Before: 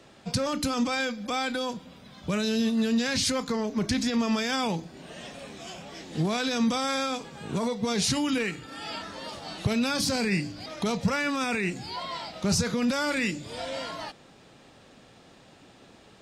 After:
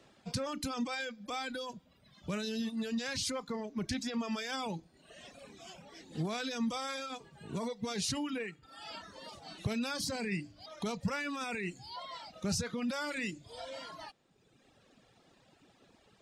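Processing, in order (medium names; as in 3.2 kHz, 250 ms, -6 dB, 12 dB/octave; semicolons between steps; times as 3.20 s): reverb removal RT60 1.4 s; 8.07–8.63 s: three bands expanded up and down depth 70%; trim -8 dB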